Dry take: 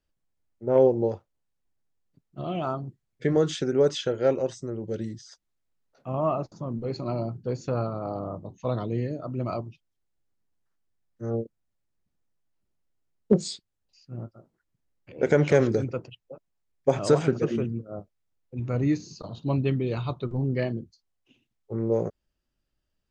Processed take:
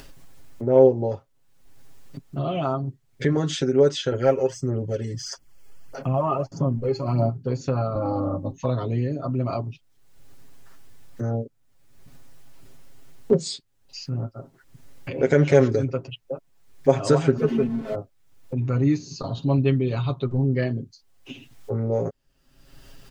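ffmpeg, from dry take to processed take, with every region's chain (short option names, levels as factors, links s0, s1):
-filter_complex "[0:a]asettb=1/sr,asplit=3[s0][s1][s2];[s0]atrim=end=4.124[s3];[s1]atrim=start=4.12:end=7.3,asetpts=PTS-STARTPTS,afade=t=in:d=0.004:c=qsin,afade=t=out:st=3.176:d=0.004:c=qsin,aphaser=in_gain=1:out_gain=1:delay=2.4:decay=0.55:speed=1.6:type=sinusoidal,asuperstop=centerf=3800:order=4:qfactor=5[s4];[s2]atrim=start=7.296[s5];[s3][s4]acrossfade=d=0.004:c1=hsin:c2=qsin[s6];[s6][s5]acrossfade=d=0.004:c1=qsin:c2=hsin,asettb=1/sr,asplit=3[s7][s8][s9];[s7]atrim=end=7.954[s10];[s8]atrim=start=7.95:end=8.52,asetpts=PTS-STARTPTS,afade=t=in:d=0.004:c=qsin,afade=t=out:st=0.566:d=0.004:c=qsin,lowshelf=f=200:g=10,aecho=1:1:3.6:0.85,atrim=end_sample=25137[s11];[s9]atrim=start=8.516[s12];[s10][s11]acrossfade=d=0.004:c1=hsin:c2=qsin[s13];[s13][s12]acrossfade=d=0.004:c1=qsin:c2=hsin,asettb=1/sr,asplit=3[s14][s15][s16];[s14]atrim=end=17.374[s17];[s15]atrim=start=17.37:end=17.95,asetpts=PTS-STARTPTS,afade=t=in:d=0.004:c=qsin,afade=t=out:st=0.576:d=0.004:c=qsin,aeval=exprs='val(0)+0.5*0.0112*sgn(val(0))':c=same,lowpass=f=1900:p=1,aecho=1:1:4.6:0.83,atrim=end_sample=25578[s18];[s16]atrim=start=17.946[s19];[s17][s18]acrossfade=d=0.004:c1=hsin:c2=qsin[s20];[s20][s19]acrossfade=d=0.004:c1=qsin:c2=hsin,aecho=1:1:7.4:0.8,acompressor=mode=upward:threshold=0.1:ratio=2.5"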